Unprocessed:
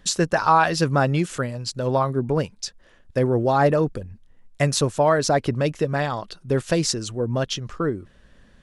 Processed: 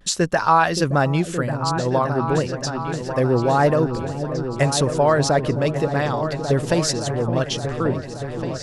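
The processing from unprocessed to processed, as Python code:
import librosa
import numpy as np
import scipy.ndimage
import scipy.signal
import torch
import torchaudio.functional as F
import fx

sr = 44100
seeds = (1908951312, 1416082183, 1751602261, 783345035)

y = fx.vibrato(x, sr, rate_hz=0.35, depth_cents=25.0)
y = fx.echo_opening(y, sr, ms=571, hz=400, octaves=2, feedback_pct=70, wet_db=-6)
y = F.gain(torch.from_numpy(y), 1.0).numpy()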